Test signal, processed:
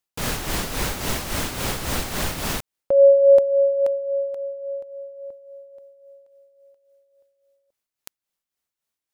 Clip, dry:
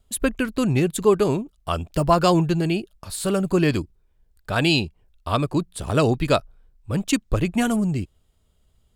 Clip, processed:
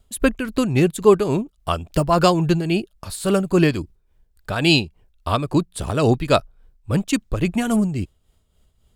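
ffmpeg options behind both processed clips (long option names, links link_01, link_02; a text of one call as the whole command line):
ffmpeg -i in.wav -af "tremolo=f=3.6:d=0.57,volume=4.5dB" out.wav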